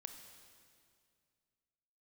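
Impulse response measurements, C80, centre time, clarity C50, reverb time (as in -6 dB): 8.0 dB, 36 ms, 7.0 dB, 2.2 s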